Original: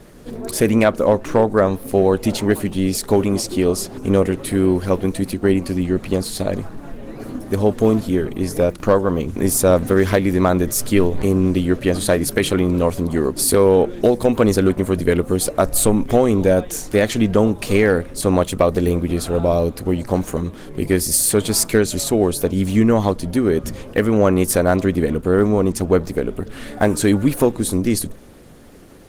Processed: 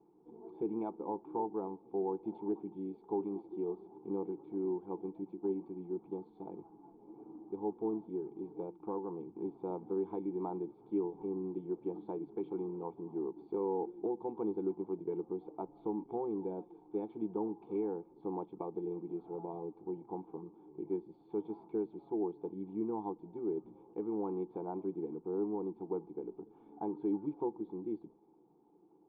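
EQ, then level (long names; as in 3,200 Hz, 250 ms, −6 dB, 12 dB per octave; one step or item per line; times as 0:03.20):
formant resonators in series u
first difference
phaser with its sweep stopped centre 390 Hz, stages 8
+17.5 dB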